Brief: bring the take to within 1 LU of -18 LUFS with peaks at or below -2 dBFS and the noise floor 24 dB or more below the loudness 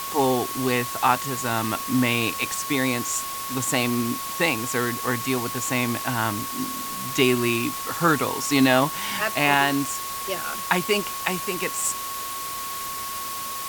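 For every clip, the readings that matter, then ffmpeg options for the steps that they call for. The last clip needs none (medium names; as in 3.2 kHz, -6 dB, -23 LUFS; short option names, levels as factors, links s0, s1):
steady tone 1.1 kHz; tone level -32 dBFS; noise floor -32 dBFS; noise floor target -48 dBFS; loudness -23.5 LUFS; peak level -4.0 dBFS; loudness target -18.0 LUFS
-> -af "bandreject=f=1100:w=30"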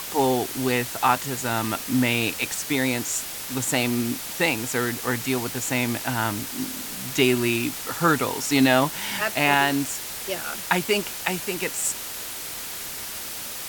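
steady tone not found; noise floor -34 dBFS; noise floor target -48 dBFS
-> -af "afftdn=nr=14:nf=-34"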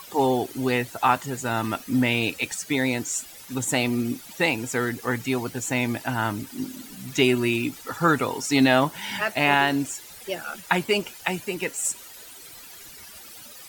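noise floor -44 dBFS; noise floor target -49 dBFS
-> -af "afftdn=nr=6:nf=-44"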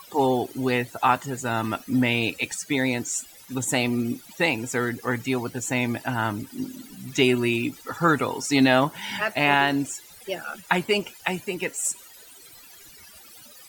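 noise floor -48 dBFS; noise floor target -49 dBFS
-> -af "afftdn=nr=6:nf=-48"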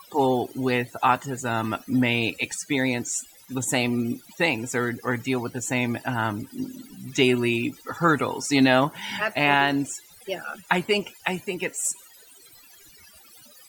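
noise floor -51 dBFS; loudness -24.5 LUFS; peak level -4.0 dBFS; loudness target -18.0 LUFS
-> -af "volume=2.11,alimiter=limit=0.794:level=0:latency=1"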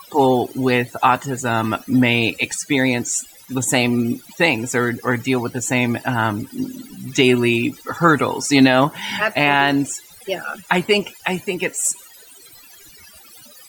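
loudness -18.5 LUFS; peak level -2.0 dBFS; noise floor -45 dBFS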